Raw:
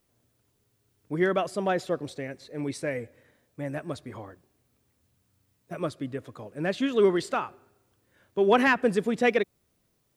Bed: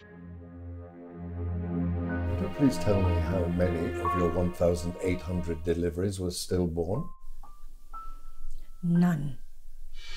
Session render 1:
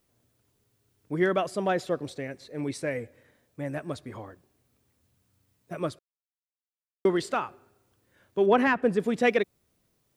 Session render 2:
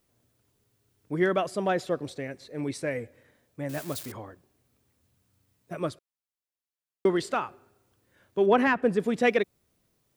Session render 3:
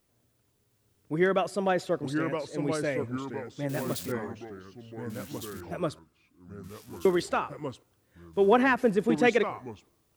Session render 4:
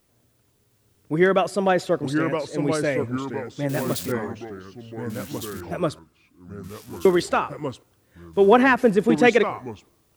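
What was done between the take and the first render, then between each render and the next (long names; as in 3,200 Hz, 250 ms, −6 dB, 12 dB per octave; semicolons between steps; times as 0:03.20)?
0:05.99–0:07.05: silence; 0:08.46–0:09.00: high-shelf EQ 2,600 Hz −9.5 dB
0:03.69–0:04.12: spike at every zero crossing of −29 dBFS
delay with pitch and tempo change per echo 708 ms, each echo −3 semitones, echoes 3, each echo −6 dB
level +6.5 dB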